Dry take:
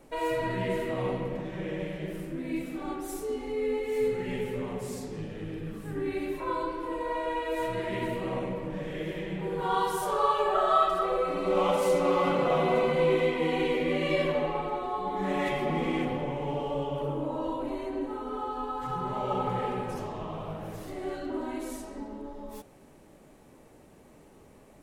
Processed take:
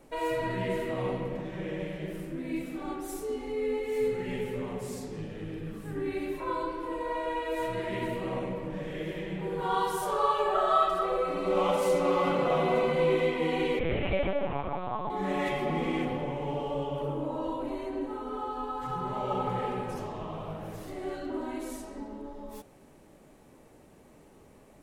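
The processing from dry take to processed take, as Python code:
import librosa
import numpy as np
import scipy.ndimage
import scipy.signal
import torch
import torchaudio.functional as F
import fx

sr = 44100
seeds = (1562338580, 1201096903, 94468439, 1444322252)

y = fx.lpc_vocoder(x, sr, seeds[0], excitation='pitch_kept', order=8, at=(13.79, 15.1))
y = y * 10.0 ** (-1.0 / 20.0)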